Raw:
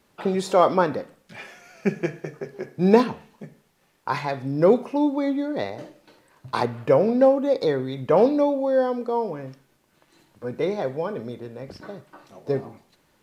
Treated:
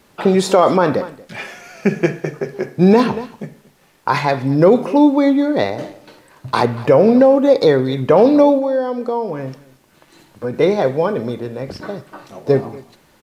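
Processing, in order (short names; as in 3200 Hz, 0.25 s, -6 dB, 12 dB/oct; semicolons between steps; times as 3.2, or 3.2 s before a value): 8.58–10.54 compressor 2.5:1, threshold -30 dBFS, peak gain reduction 9.5 dB; echo 0.234 s -21.5 dB; maximiser +11.5 dB; gain -1 dB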